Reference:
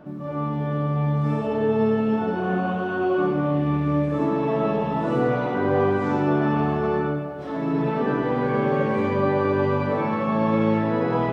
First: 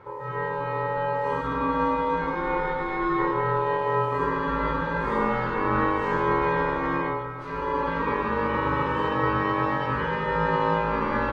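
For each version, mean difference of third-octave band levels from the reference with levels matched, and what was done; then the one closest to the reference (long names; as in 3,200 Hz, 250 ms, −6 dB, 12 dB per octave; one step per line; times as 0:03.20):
6.0 dB: ring modulation 710 Hz
double-tracking delay 17 ms −12.5 dB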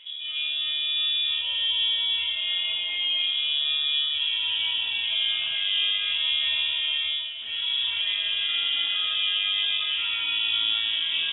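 20.0 dB: in parallel at −2 dB: brickwall limiter −19 dBFS, peak gain reduction 10 dB
on the sum: delay with a high-pass on its return 158 ms, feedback 75%, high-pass 1,700 Hz, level −15.5 dB
voice inversion scrambler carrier 3,600 Hz
level −7.5 dB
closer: first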